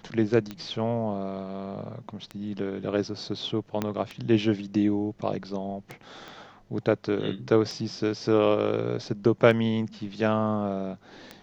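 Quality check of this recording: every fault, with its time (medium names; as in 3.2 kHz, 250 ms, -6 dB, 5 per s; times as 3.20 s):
tick 33 1/3 rpm -21 dBFS
3.82 s: pop -13 dBFS
6.28 s: pop -28 dBFS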